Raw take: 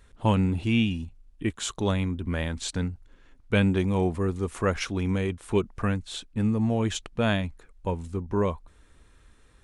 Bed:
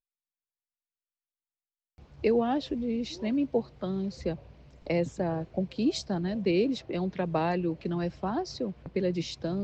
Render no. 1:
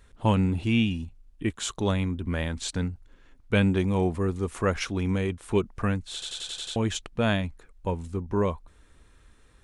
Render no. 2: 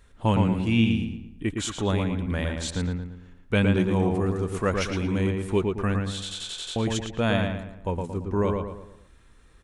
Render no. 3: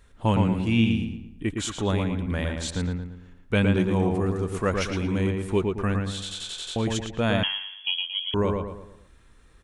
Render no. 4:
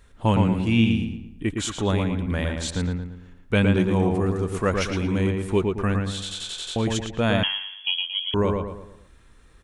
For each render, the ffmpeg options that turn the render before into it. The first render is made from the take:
-filter_complex "[0:a]asplit=8[s0][s1][s2][s3][s4][s5][s6][s7];[s0]atrim=end=6.222[s8];[s1]atrim=start=6.128:end=6.222[s9];[s2]atrim=start=6.128:end=6.222[s10];[s3]atrim=start=6.128:end=6.222[s11];[s4]atrim=start=6.128:end=6.222[s12];[s5]atrim=start=6.128:end=6.222[s13];[s6]atrim=start=6.128:end=6.222[s14];[s7]atrim=start=6.758[s15];[s8][s9]acrossfade=d=0.004:c1=hsin:c2=hsin[s16];[s16][s10]acrossfade=d=0.004:c1=hsin:c2=hsin[s17];[s17][s11]acrossfade=d=0.004:c1=hsin:c2=hsin[s18];[s18][s12]acrossfade=d=0.004:c1=hsin:c2=hsin[s19];[s19][s13]acrossfade=d=0.004:c1=hsin:c2=hsin[s20];[s20][s14]acrossfade=d=0.004:c1=hsin:c2=hsin[s21];[s21][s15]acrossfade=d=0.004:c1=hsin:c2=hsin"
-filter_complex "[0:a]asplit=2[s0][s1];[s1]adelay=113,lowpass=f=3000:p=1,volume=0.668,asplit=2[s2][s3];[s3]adelay=113,lowpass=f=3000:p=1,volume=0.43,asplit=2[s4][s5];[s5]adelay=113,lowpass=f=3000:p=1,volume=0.43,asplit=2[s6][s7];[s7]adelay=113,lowpass=f=3000:p=1,volume=0.43,asplit=2[s8][s9];[s9]adelay=113,lowpass=f=3000:p=1,volume=0.43[s10];[s0][s2][s4][s6][s8][s10]amix=inputs=6:normalize=0"
-filter_complex "[0:a]asettb=1/sr,asplit=3[s0][s1][s2];[s0]atrim=end=7.434[s3];[s1]atrim=start=7.43:end=8.34,asetpts=PTS-STARTPTS,afade=t=in:d=0.004:c=qsin,afade=t=out:st=0.906:d=0.004:c=qsin,lowpass=f=2900:t=q:w=0.5098,lowpass=f=2900:t=q:w=0.6013,lowpass=f=2900:t=q:w=0.9,lowpass=f=2900:t=q:w=2.563,afreqshift=-3400[s4];[s2]atrim=start=8.336[s5];[s3][s4]acrossfade=d=0.004:c1=hsin:c2=qsin[s6];[s6][s5]acrossfade=d=0.004:c1=qsin:c2=hsin"
-af "volume=1.26"

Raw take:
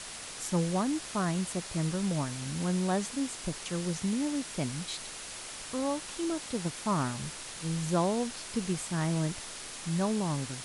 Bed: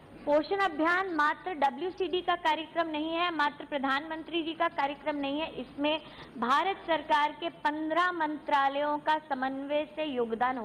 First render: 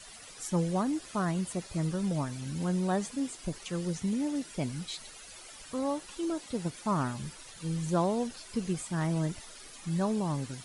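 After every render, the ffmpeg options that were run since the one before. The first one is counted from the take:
-af "afftdn=nr=12:nf=-43"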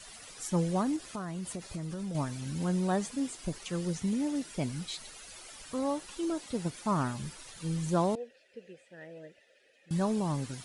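-filter_complex "[0:a]asettb=1/sr,asplit=3[s0][s1][s2];[s0]atrim=end=0.964[s3];[s1]atrim=start=0.96:end=2.15,asetpts=PTS-STARTPTS,afade=t=in:d=0.004:c=qsin,afade=t=out:st=1.186:d=0.004:c=qsin,acompressor=threshold=0.0224:ratio=10:attack=3.2:release=140:knee=1:detection=peak[s4];[s2]atrim=start=2.146[s5];[s3][s4]acrossfade=d=0.004:c1=hsin:c2=qsin[s6];[s6][s5]acrossfade=d=0.004:c1=qsin:c2=hsin,asettb=1/sr,asplit=3[s7][s8][s9];[s7]atrim=end=8.154[s10];[s8]atrim=start=8.15:end=9.91,asetpts=PTS-STARTPTS,afade=t=in:d=0.004:c=qsin,afade=t=out:st=1.756:d=0.004:c=qsin,asplit=3[s11][s12][s13];[s11]bandpass=f=530:t=q:w=8,volume=1[s14];[s12]bandpass=f=1840:t=q:w=8,volume=0.501[s15];[s13]bandpass=f=2480:t=q:w=8,volume=0.355[s16];[s14][s15][s16]amix=inputs=3:normalize=0[s17];[s9]atrim=start=9.906[s18];[s10][s17]acrossfade=d=0.004:c1=hsin:c2=qsin[s19];[s19][s18]acrossfade=d=0.004:c1=qsin:c2=hsin"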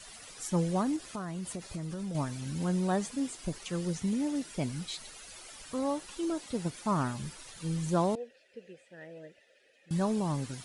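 -af anull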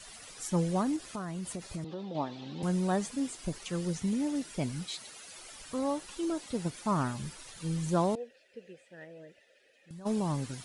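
-filter_complex "[0:a]asettb=1/sr,asplit=3[s0][s1][s2];[s0]atrim=end=1.844[s3];[s1]atrim=start=1.84:end=2.63,asetpts=PTS-STARTPTS,afade=t=in:d=0.004:c=qsin,afade=t=out:st=0.786:d=0.004:c=qsin,highpass=240,equalizer=f=350:t=q:w=4:g=5,equalizer=f=520:t=q:w=4:g=3,equalizer=f=800:t=q:w=4:g=8,equalizer=f=1500:t=q:w=4:g=-7,equalizer=f=2200:t=q:w=4:g=-5,equalizer=f=3700:t=q:w=4:g=6,lowpass=f=4200:w=0.5412,lowpass=f=4200:w=1.3066[s4];[s2]atrim=start=2.626[s5];[s3][s4]acrossfade=d=0.004:c1=hsin:c2=qsin[s6];[s6][s5]acrossfade=d=0.004:c1=qsin:c2=hsin,asettb=1/sr,asplit=3[s7][s8][s9];[s7]atrim=end=4.844[s10];[s8]atrim=start=4.84:end=5.39,asetpts=PTS-STARTPTS,afade=t=in:d=0.004:c=qsin,afade=t=out:st=0.546:d=0.004:c=qsin,highpass=120[s11];[s9]atrim=start=5.386[s12];[s10][s11]acrossfade=d=0.004:c1=hsin:c2=qsin[s13];[s13][s12]acrossfade=d=0.004:c1=qsin:c2=hsin,asplit=3[s14][s15][s16];[s14]afade=t=out:st=9.04:d=0.02[s17];[s15]acompressor=threshold=0.00562:ratio=6:attack=3.2:release=140:knee=1:detection=peak,afade=t=in:st=9.04:d=0.02,afade=t=out:st=10.05:d=0.02[s18];[s16]afade=t=in:st=10.05:d=0.02[s19];[s17][s18][s19]amix=inputs=3:normalize=0"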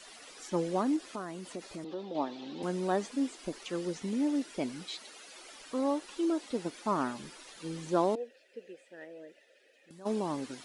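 -filter_complex "[0:a]acrossover=split=5900[s0][s1];[s1]acompressor=threshold=0.00141:ratio=4:attack=1:release=60[s2];[s0][s2]amix=inputs=2:normalize=0,lowshelf=f=190:t=q:w=1.5:g=-14"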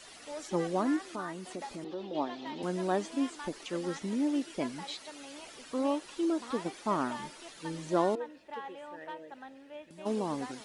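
-filter_complex "[1:a]volume=0.15[s0];[0:a][s0]amix=inputs=2:normalize=0"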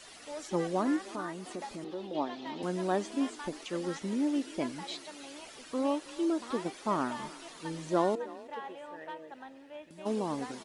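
-filter_complex "[0:a]asplit=4[s0][s1][s2][s3];[s1]adelay=319,afreqshift=32,volume=0.112[s4];[s2]adelay=638,afreqshift=64,volume=0.0403[s5];[s3]adelay=957,afreqshift=96,volume=0.0146[s6];[s0][s4][s5][s6]amix=inputs=4:normalize=0"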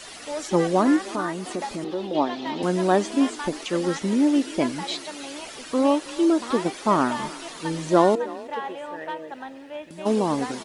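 -af "volume=3.35"

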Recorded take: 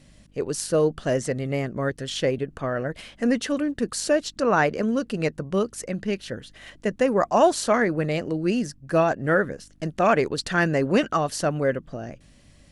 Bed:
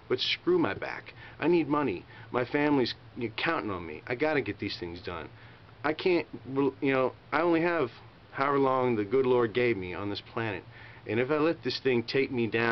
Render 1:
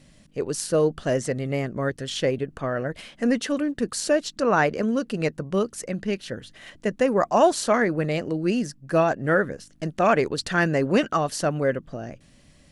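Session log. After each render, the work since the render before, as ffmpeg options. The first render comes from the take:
-af "bandreject=f=50:t=h:w=4,bandreject=f=100:t=h:w=4"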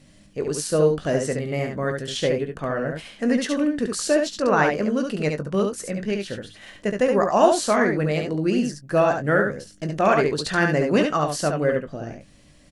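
-filter_complex "[0:a]asplit=2[s0][s1];[s1]adelay=20,volume=0.299[s2];[s0][s2]amix=inputs=2:normalize=0,asplit=2[s3][s4];[s4]aecho=0:1:70:0.596[s5];[s3][s5]amix=inputs=2:normalize=0"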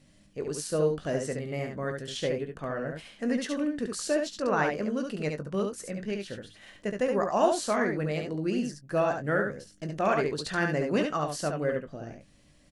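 -af "volume=0.422"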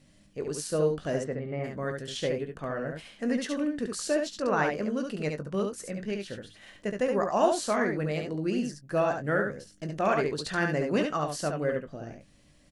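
-filter_complex "[0:a]asplit=3[s0][s1][s2];[s0]afade=t=out:st=1.23:d=0.02[s3];[s1]lowpass=1900,afade=t=in:st=1.23:d=0.02,afade=t=out:st=1.63:d=0.02[s4];[s2]afade=t=in:st=1.63:d=0.02[s5];[s3][s4][s5]amix=inputs=3:normalize=0"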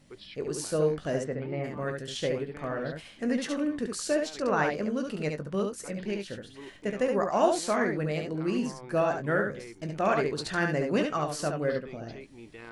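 -filter_complex "[1:a]volume=0.112[s0];[0:a][s0]amix=inputs=2:normalize=0"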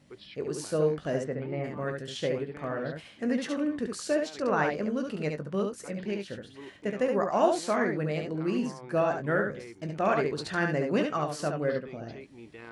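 -af "highpass=63,highshelf=f=5000:g=-6"

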